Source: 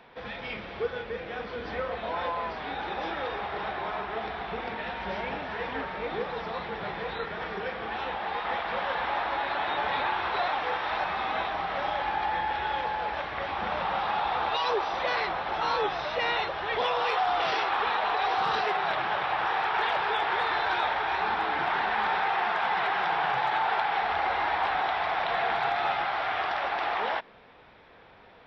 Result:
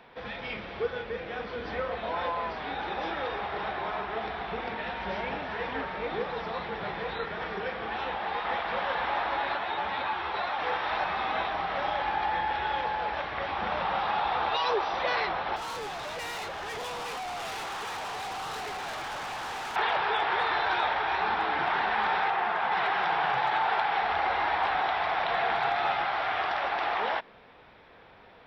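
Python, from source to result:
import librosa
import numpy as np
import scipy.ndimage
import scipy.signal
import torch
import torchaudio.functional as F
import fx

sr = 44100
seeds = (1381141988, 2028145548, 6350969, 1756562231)

y = fx.ensemble(x, sr, at=(9.56, 10.58), fade=0.02)
y = fx.clip_hard(y, sr, threshold_db=-34.5, at=(15.56, 19.76))
y = fx.high_shelf(y, sr, hz=3200.0, db=-8.0, at=(22.3, 22.72))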